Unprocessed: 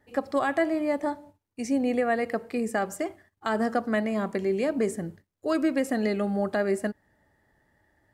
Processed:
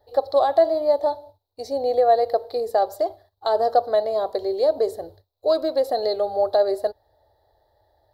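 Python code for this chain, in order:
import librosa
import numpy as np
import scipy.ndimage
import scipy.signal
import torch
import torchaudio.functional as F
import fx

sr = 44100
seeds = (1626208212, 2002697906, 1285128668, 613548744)

y = fx.curve_eq(x, sr, hz=(100.0, 190.0, 460.0, 730.0, 1200.0, 2600.0, 4000.0, 6100.0, 8600.0, 13000.0), db=(0, -28, 4, 8, -6, -21, 12, -10, -14, 2))
y = y * 10.0 ** (3.5 / 20.0)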